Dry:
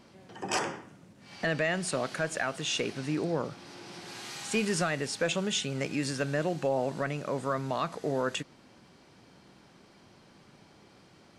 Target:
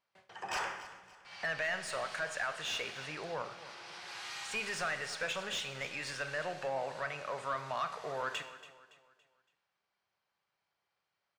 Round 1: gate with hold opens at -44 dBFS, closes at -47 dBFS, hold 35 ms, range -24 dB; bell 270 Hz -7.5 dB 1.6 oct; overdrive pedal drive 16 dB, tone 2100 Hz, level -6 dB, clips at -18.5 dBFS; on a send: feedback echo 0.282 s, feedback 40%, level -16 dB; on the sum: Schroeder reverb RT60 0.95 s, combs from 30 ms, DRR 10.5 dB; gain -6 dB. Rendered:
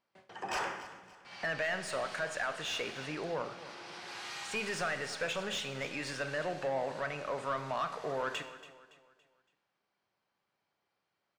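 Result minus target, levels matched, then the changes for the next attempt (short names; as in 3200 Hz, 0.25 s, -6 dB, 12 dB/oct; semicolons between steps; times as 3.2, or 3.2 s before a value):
250 Hz band +6.0 dB
change: bell 270 Hz -18 dB 1.6 oct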